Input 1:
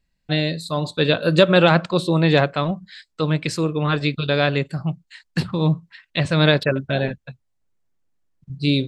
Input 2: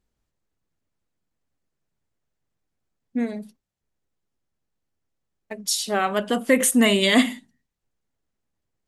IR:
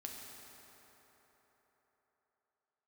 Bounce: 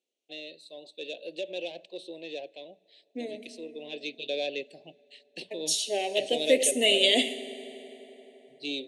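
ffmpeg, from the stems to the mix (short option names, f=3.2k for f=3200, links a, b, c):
-filter_complex "[0:a]bandreject=f=6.9k:w=8.1,asoftclip=type=tanh:threshold=-9.5dB,volume=-5dB,afade=t=in:st=3.53:d=0.77:silence=0.375837,asplit=2[a][b];[b]volume=-20dB[c];[1:a]volume=-0.5dB,asplit=2[d][e];[e]volume=-5dB[f];[2:a]atrim=start_sample=2205[g];[c][f]amix=inputs=2:normalize=0[h];[h][g]afir=irnorm=-1:irlink=0[i];[a][d][i]amix=inputs=3:normalize=0,asuperstop=centerf=1300:order=4:qfactor=0.56,highpass=f=390:w=0.5412,highpass=f=390:w=1.3066,equalizer=f=430:t=q:w=4:g=-3,equalizer=f=880:t=q:w=4:g=-5,equalizer=f=1.3k:t=q:w=4:g=-8,equalizer=f=2.8k:t=q:w=4:g=5,equalizer=f=4.9k:t=q:w=4:g=-9,equalizer=f=7.5k:t=q:w=4:g=-7,lowpass=f=8.8k:w=0.5412,lowpass=f=8.8k:w=1.3066"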